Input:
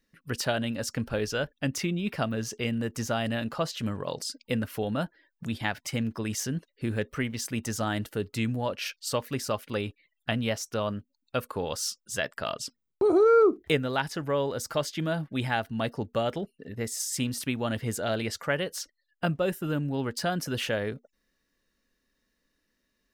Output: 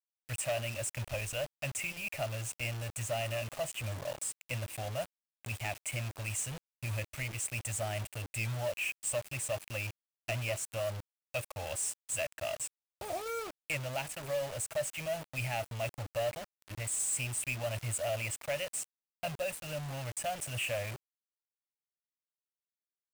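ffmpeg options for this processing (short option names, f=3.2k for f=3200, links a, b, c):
-af "firequalizer=gain_entry='entry(120,0);entry(180,-19);entry(410,-26);entry(590,4);entry(1000,-11);entry(1500,-13);entry(2500,9);entry(4100,-26);entry(8100,11);entry(12000,-7)':delay=0.05:min_phase=1,asoftclip=type=tanh:threshold=-27dB,acrusher=bits=6:mix=0:aa=0.000001,volume=-1.5dB"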